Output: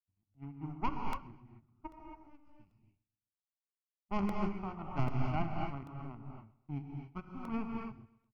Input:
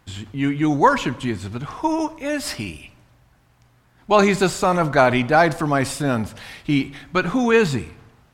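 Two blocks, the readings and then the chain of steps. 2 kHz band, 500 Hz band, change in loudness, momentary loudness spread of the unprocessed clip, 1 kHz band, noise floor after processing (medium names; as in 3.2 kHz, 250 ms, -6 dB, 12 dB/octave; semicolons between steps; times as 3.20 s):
-28.0 dB, -27.0 dB, -20.0 dB, 13 LU, -20.5 dB, under -85 dBFS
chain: high-pass 54 Hz 6 dB/octave; power-law waveshaper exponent 3; FFT filter 120 Hz 0 dB, 1.3 kHz -13 dB, 1.9 kHz -19 dB, 8.9 kHz -30 dB; saturation -30.5 dBFS, distortion -7 dB; distance through air 180 m; static phaser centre 2.5 kHz, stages 8; on a send: feedback delay 129 ms, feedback 42%, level -20.5 dB; on the sum: gated-style reverb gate 300 ms rising, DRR 1 dB; crackling interface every 0.79 s, samples 64, repeat, from 0.34 s; trim +9 dB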